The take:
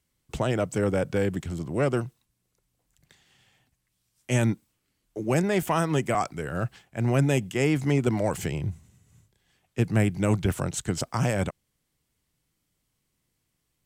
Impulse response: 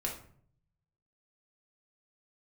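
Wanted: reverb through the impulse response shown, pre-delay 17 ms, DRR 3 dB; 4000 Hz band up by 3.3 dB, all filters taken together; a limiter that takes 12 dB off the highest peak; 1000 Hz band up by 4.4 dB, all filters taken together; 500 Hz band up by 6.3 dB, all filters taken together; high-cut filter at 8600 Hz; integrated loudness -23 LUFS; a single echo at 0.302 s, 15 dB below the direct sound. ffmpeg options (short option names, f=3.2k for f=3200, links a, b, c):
-filter_complex "[0:a]lowpass=8.6k,equalizer=f=500:t=o:g=7,equalizer=f=1k:t=o:g=3,equalizer=f=4k:t=o:g=4.5,alimiter=limit=-19dB:level=0:latency=1,aecho=1:1:302:0.178,asplit=2[a][b];[1:a]atrim=start_sample=2205,adelay=17[c];[b][c]afir=irnorm=-1:irlink=0,volume=-5.5dB[d];[a][d]amix=inputs=2:normalize=0,volume=5dB"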